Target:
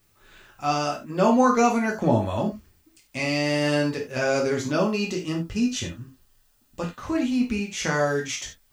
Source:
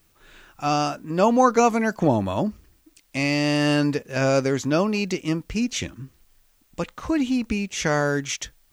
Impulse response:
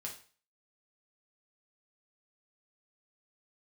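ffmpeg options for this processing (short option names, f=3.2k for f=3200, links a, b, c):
-filter_complex "[0:a]asettb=1/sr,asplit=3[a][b][c];[a]atrim=end=4.744[d];[b]atrim=start=4.74:end=7,asetpts=PTS-STARTPTS,afade=t=in:d=0.004:c=qsin,afade=t=out:st=2.256:d=0.004:c=qsin,bandreject=f=2.2k:w=5.7[e];[c]atrim=start=6.996[f];[d][e]acrossfade=d=0.004:c1=hsin:c2=qsin[g];[g][f]acrossfade=d=0.004:c1=qsin:c2=hsin[h];[1:a]atrim=start_sample=2205,atrim=end_sample=4410[i];[h][i]afir=irnorm=-1:irlink=0,volume=1dB"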